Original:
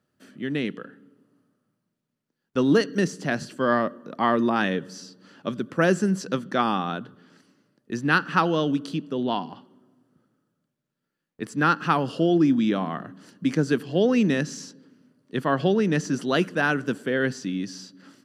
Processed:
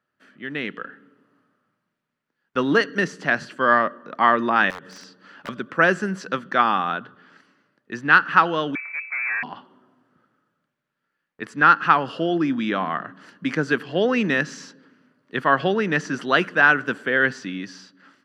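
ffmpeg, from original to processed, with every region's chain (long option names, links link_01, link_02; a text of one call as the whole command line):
ffmpeg -i in.wav -filter_complex "[0:a]asettb=1/sr,asplit=3[link_01][link_02][link_03];[link_01]atrim=end=4.704[link_04];[link_02]atrim=start=4.7:end=5.49,asetpts=PTS-STARTPTS,afade=type=in:duration=0.004:curve=qsin,afade=type=out:start_time=0.786:duration=0.004:curve=qsin,acompressor=threshold=-35dB:ratio=5:attack=3.2:release=140:knee=1:detection=peak,aeval=exprs='(mod(37.6*val(0)+1,2)-1)/37.6':channel_layout=same[link_05];[link_03]atrim=start=5.486[link_06];[link_04][link_05]acrossfade=duration=0.004:curve1=hsin:curve2=qsin[link_07];[link_07][link_06]acrossfade=duration=0.004:curve1=qsin:curve2=hsin,asettb=1/sr,asplit=3[link_08][link_09][link_10];[link_08]atrim=end=8.754[link_11];[link_09]atrim=start=8.75:end=9.43,asetpts=PTS-STARTPTS,afade=type=in:duration=0.004:curve=qsin,afade=type=out:start_time=0.676:duration=0.004:curve=qsin,highpass=190,aeval=exprs='(tanh(39.8*val(0)+0.45)-tanh(0.45))/39.8':channel_layout=same,lowpass=frequency=2200:width_type=q:width=0.5098,lowpass=frequency=2200:width_type=q:width=0.6013,lowpass=frequency=2200:width_type=q:width=0.9,lowpass=frequency=2200:width_type=q:width=2.563,afreqshift=-2600[link_12];[link_10]atrim=start=9.426[link_13];[link_11][link_12]acrossfade=duration=0.004:curve1=hsin:curve2=qsin[link_14];[link_14][link_13]acrossfade=duration=0.004:curve1=qsin:curve2=hsin,highshelf=frequency=6100:gain=-6,dynaudnorm=framelen=150:gausssize=9:maxgain=8dB,equalizer=frequency=1600:width=0.46:gain=14.5,volume=-11dB" out.wav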